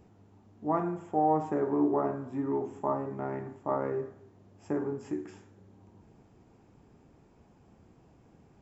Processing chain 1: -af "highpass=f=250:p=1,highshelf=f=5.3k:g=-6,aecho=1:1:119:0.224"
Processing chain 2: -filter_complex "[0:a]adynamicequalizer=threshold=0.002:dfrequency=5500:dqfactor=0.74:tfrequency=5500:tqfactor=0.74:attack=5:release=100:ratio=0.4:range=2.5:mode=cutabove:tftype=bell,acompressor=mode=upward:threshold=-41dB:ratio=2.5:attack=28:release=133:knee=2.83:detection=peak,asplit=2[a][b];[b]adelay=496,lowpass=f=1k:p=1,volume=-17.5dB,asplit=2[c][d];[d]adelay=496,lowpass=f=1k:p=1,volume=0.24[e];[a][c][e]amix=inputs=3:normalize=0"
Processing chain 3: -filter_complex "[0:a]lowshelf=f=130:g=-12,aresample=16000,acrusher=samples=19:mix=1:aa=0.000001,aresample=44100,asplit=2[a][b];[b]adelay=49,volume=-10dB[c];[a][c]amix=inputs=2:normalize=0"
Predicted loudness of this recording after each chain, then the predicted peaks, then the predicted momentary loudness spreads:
-33.0, -32.0, -33.0 LUFS; -15.5, -15.0, -15.0 dBFS; 11, 23, 11 LU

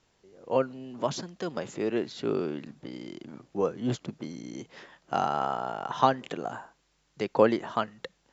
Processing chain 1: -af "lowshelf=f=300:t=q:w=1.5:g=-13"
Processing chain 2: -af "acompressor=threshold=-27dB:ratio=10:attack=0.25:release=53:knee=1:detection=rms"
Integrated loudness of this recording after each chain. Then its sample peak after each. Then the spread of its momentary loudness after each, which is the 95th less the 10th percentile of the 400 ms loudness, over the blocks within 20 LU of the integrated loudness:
-29.0, -38.0 LUFS; -5.0, -24.0 dBFS; 22, 8 LU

